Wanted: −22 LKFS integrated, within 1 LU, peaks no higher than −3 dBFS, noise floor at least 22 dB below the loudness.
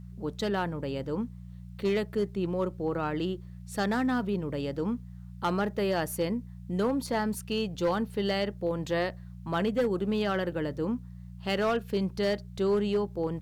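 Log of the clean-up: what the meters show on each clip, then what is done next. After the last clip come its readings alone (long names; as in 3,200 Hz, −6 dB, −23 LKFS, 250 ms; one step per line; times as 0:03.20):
share of clipped samples 0.8%; peaks flattened at −21.0 dBFS; mains hum 60 Hz; hum harmonics up to 180 Hz; level of the hum −41 dBFS; integrated loudness −30.5 LKFS; sample peak −21.0 dBFS; target loudness −22.0 LKFS
→ clipped peaks rebuilt −21 dBFS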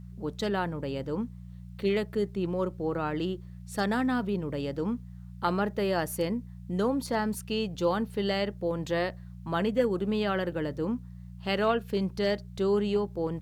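share of clipped samples 0.0%; mains hum 60 Hz; hum harmonics up to 180 Hz; level of the hum −41 dBFS
→ hum removal 60 Hz, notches 3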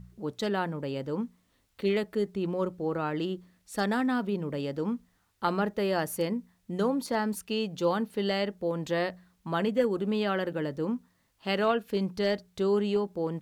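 mains hum none found; integrated loudness −30.5 LKFS; sample peak −14.0 dBFS; target loudness −22.0 LKFS
→ level +8.5 dB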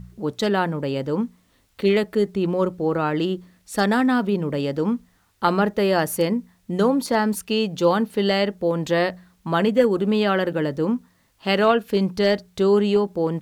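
integrated loudness −22.0 LKFS; sample peak −5.5 dBFS; background noise floor −62 dBFS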